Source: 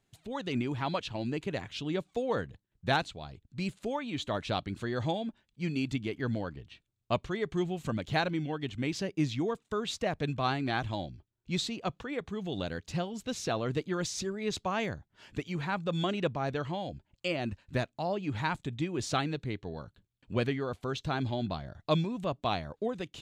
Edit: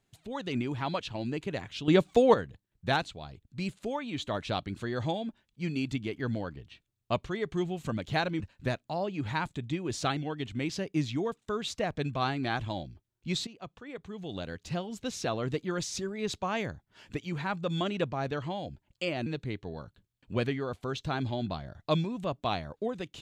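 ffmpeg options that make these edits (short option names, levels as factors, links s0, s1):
-filter_complex "[0:a]asplit=7[s0][s1][s2][s3][s4][s5][s6];[s0]atrim=end=1.882[s7];[s1]atrim=start=1.878:end=2.342,asetpts=PTS-STARTPTS,volume=3.35[s8];[s2]atrim=start=2.338:end=8.402[s9];[s3]atrim=start=17.488:end=19.262[s10];[s4]atrim=start=8.398:end=11.7,asetpts=PTS-STARTPTS,afade=t=out:st=3.298:d=0.004:c=hsin:silence=0.223872[s11];[s5]atrim=start=11.7:end=17.492,asetpts=PTS-STARTPTS,afade=t=in:d=1.43:silence=0.223872[s12];[s6]atrim=start=19.258[s13];[s7][s8]acrossfade=d=0.004:c1=hsin:c2=hsin[s14];[s14][s9]acrossfade=d=0.004:c1=hsin:c2=hsin[s15];[s15][s10]acrossfade=d=0.004:c1=hsin:c2=hsin[s16];[s11][s12]concat=n=2:v=0:a=1[s17];[s16][s17]acrossfade=d=0.004:c1=hsin:c2=hsin[s18];[s18][s13]acrossfade=d=0.004:c1=hsin:c2=hsin"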